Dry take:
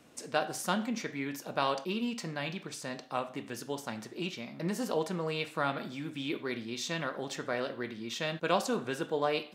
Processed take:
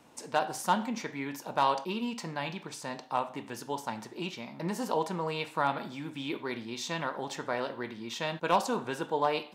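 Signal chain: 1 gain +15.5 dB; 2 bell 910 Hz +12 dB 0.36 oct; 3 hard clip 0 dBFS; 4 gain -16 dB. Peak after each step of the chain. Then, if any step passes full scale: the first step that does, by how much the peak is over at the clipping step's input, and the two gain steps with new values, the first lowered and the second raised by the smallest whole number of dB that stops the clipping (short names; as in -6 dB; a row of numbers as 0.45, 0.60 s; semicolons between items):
+2.0, +4.0, 0.0, -16.0 dBFS; step 1, 4.0 dB; step 1 +11.5 dB, step 4 -12 dB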